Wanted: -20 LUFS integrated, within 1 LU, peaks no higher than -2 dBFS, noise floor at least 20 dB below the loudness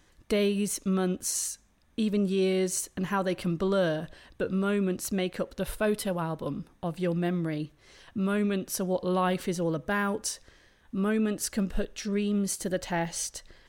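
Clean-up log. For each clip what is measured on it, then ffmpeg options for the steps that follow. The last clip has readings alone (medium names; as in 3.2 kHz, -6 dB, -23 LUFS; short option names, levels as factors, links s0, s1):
loudness -29.5 LUFS; peak level -16.0 dBFS; loudness target -20.0 LUFS
-> -af "volume=2.99"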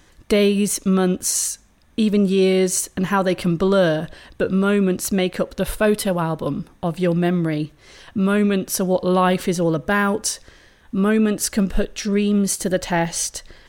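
loudness -20.0 LUFS; peak level -6.5 dBFS; noise floor -54 dBFS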